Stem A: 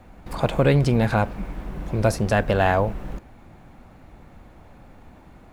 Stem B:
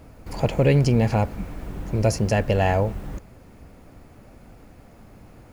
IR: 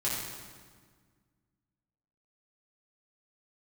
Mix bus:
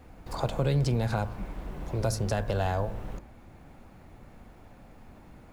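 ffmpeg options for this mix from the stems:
-filter_complex "[0:a]bandreject=f=54.43:t=h:w=4,bandreject=f=108.86:t=h:w=4,bandreject=f=163.29:t=h:w=4,bandreject=f=217.72:t=h:w=4,bandreject=f=272.15:t=h:w=4,bandreject=f=326.58:t=h:w=4,bandreject=f=381.01:t=h:w=4,bandreject=f=435.44:t=h:w=4,bandreject=f=489.87:t=h:w=4,bandreject=f=544.3:t=h:w=4,bandreject=f=598.73:t=h:w=4,bandreject=f=653.16:t=h:w=4,bandreject=f=707.59:t=h:w=4,bandreject=f=762.02:t=h:w=4,bandreject=f=816.45:t=h:w=4,bandreject=f=870.88:t=h:w=4,bandreject=f=925.31:t=h:w=4,bandreject=f=979.74:t=h:w=4,bandreject=f=1.03417k:t=h:w=4,bandreject=f=1.0886k:t=h:w=4,bandreject=f=1.14303k:t=h:w=4,bandreject=f=1.19746k:t=h:w=4,bandreject=f=1.25189k:t=h:w=4,bandreject=f=1.30632k:t=h:w=4,bandreject=f=1.36075k:t=h:w=4,bandreject=f=1.41518k:t=h:w=4,bandreject=f=1.46961k:t=h:w=4,bandreject=f=1.52404k:t=h:w=4,bandreject=f=1.57847k:t=h:w=4,bandreject=f=1.6329k:t=h:w=4,bandreject=f=1.68733k:t=h:w=4,bandreject=f=1.74176k:t=h:w=4,acrossover=split=210|3000[a][b][c];[b]acompressor=threshold=-26dB:ratio=6[d];[a][d][c]amix=inputs=3:normalize=0,volume=-4.5dB,asplit=2[e][f];[1:a]volume=-9.5dB[g];[f]apad=whole_len=243722[h];[g][h]sidechaincompress=threshold=-29dB:ratio=8:attack=16:release=1430[i];[e][i]amix=inputs=2:normalize=0"

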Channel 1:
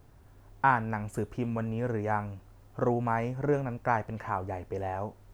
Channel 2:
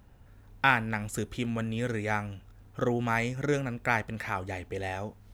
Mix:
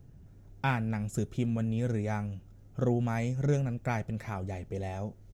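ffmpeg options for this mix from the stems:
-filter_complex "[0:a]tiltshelf=f=680:g=8,volume=-6dB[a];[1:a]highshelf=f=11k:g=3.5,aecho=1:1:6.1:0.52,volume=-1,volume=-11.5dB[b];[a][b]amix=inputs=2:normalize=0,equalizer=f=160:t=o:w=0.67:g=10,equalizer=f=1k:t=o:w=0.67:g=-7,equalizer=f=6.3k:t=o:w=0.67:g=7"

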